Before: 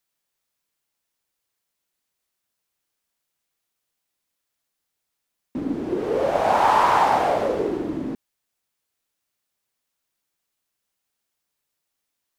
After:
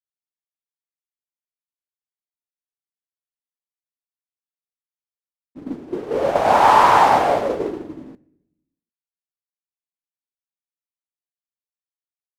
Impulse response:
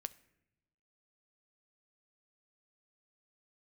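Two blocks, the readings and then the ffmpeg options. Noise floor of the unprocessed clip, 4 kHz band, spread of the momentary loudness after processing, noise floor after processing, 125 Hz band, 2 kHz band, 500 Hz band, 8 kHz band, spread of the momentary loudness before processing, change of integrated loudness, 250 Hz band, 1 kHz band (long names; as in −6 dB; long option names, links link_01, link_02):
−80 dBFS, +4.5 dB, 20 LU, below −85 dBFS, +1.5 dB, +4.5 dB, +2.5 dB, +4.5 dB, 15 LU, +5.5 dB, −1.5 dB, +5.0 dB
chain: -filter_complex "[0:a]agate=range=-33dB:threshold=-17dB:ratio=3:detection=peak,asplit=2[link_01][link_02];[1:a]atrim=start_sample=2205[link_03];[link_02][link_03]afir=irnorm=-1:irlink=0,volume=9.5dB[link_04];[link_01][link_04]amix=inputs=2:normalize=0,volume=-4.5dB"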